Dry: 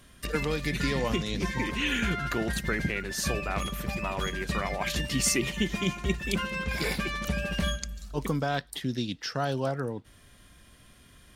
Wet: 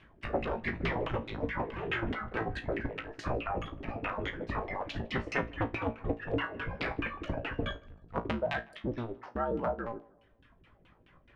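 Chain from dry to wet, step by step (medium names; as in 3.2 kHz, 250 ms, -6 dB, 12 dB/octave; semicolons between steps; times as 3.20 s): cycle switcher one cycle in 2, inverted; reverb removal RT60 1 s; LFO low-pass saw down 4.7 Hz 320–2900 Hz; feedback comb 57 Hz, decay 0.21 s, harmonics all, mix 80%; tape echo 155 ms, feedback 49%, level -20.5 dB, low-pass 1.2 kHz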